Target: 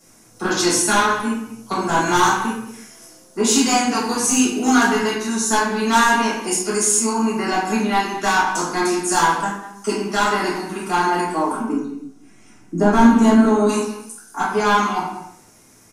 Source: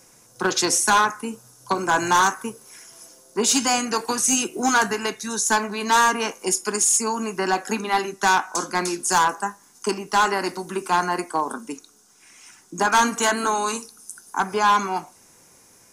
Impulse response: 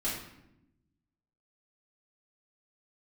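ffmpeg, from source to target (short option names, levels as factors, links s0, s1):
-filter_complex "[0:a]asettb=1/sr,asplit=3[s0][s1][s2];[s0]atrim=end=11.604[s3];[s1]atrim=start=11.6:end=13.69,asetpts=PTS-STARTPTS,afade=t=in:d=0.004:c=qsin,afade=t=out:st=2.086:d=0.004:c=qsin,tiltshelf=f=750:g=10[s4];[s2]atrim=start=13.686[s5];[s3][s4]acrossfade=d=0.004:c1=hsin:c2=qsin[s6];[s6][s5]acrossfade=d=0.004:c1=qsin:c2=hsin,asplit=2[s7][s8];[s8]adelay=190,highpass=300,lowpass=3400,asoftclip=type=hard:threshold=0.15,volume=0.224[s9];[s7][s9]amix=inputs=2:normalize=0[s10];[1:a]atrim=start_sample=2205,afade=t=out:st=0.43:d=0.01,atrim=end_sample=19404[s11];[s10][s11]afir=irnorm=-1:irlink=0,volume=0.75"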